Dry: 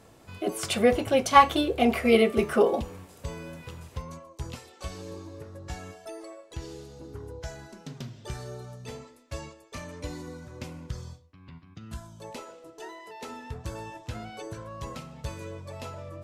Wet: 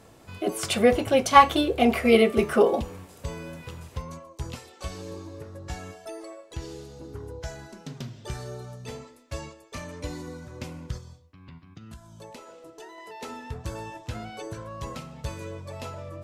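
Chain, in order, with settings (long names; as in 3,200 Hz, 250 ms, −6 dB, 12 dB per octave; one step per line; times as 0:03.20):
0:10.97–0:12.98: downward compressor 6 to 1, threshold −43 dBFS, peak gain reduction 10.5 dB
level +2 dB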